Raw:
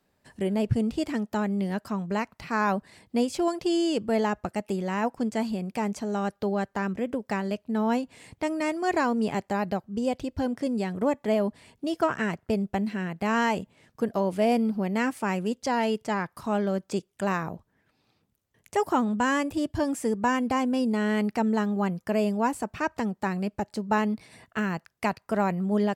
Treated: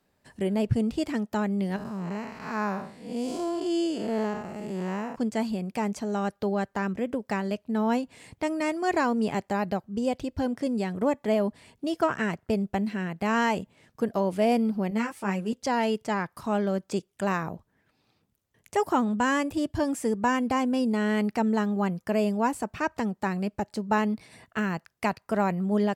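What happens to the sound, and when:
1.76–5.16 time blur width 0.215 s
14.9–15.53 ensemble effect

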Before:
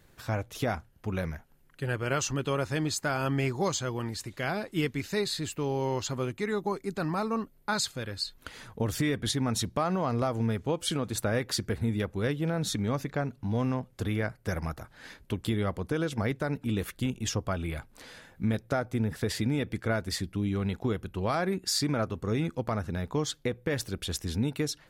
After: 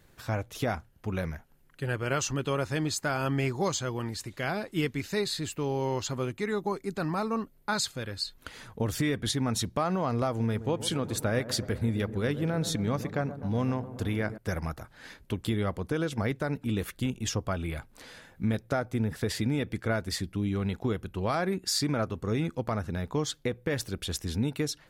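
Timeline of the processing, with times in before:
10.31–14.38 dark delay 0.126 s, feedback 70%, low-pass 1100 Hz, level -12.5 dB

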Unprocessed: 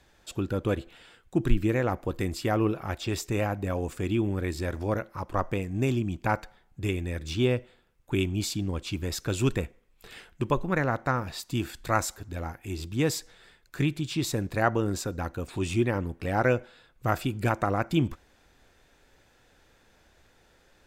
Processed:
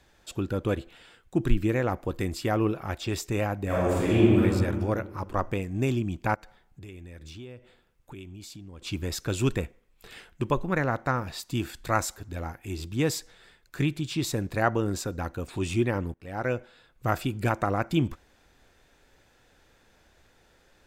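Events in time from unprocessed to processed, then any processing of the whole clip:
3.65–4.41 reverb throw, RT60 1.9 s, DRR -7 dB
6.34–8.82 compressor 4:1, threshold -43 dBFS
16.14–17.13 fade in equal-power, from -19.5 dB

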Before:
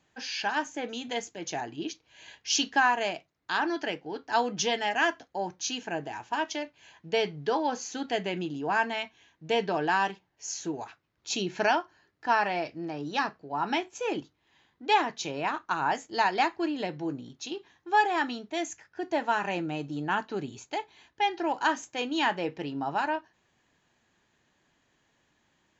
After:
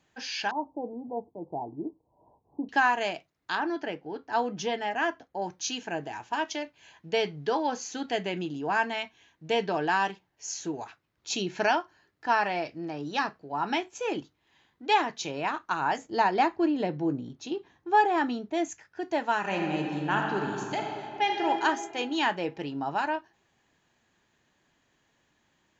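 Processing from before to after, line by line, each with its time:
0.51–2.69 steep low-pass 1000 Hz 72 dB/oct
3.55–5.42 high shelf 2300 Hz -10.5 dB
15.98–18.69 tilt shelf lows +5.5 dB, about 1200 Hz
19.39–21.46 reverb throw, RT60 2.4 s, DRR 0.5 dB

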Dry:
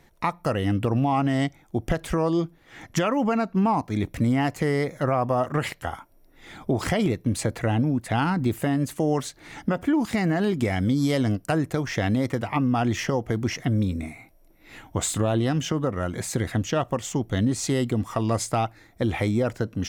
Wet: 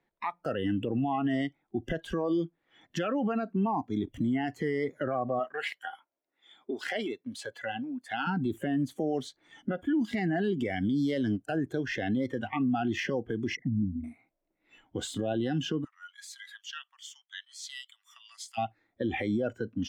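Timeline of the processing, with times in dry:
5.39–8.27 HPF 750 Hz 6 dB/oct
13.55–14.04 formant sharpening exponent 3
15.84–18.58 Bessel high-pass 2000 Hz, order 8
whole clip: spectral noise reduction 18 dB; three-band isolator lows -13 dB, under 170 Hz, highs -17 dB, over 3900 Hz; limiter -21.5 dBFS

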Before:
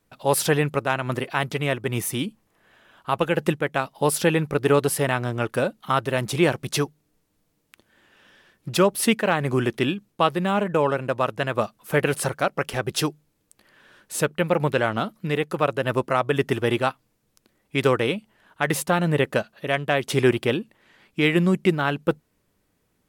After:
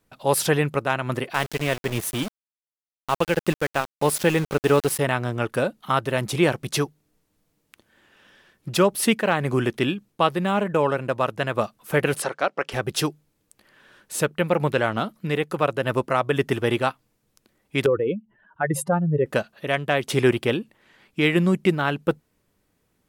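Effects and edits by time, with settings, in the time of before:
1.34–4.99 sample gate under -28 dBFS
12.22–12.72 BPF 300–5700 Hz
17.86–19.26 spectral contrast raised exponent 2.3

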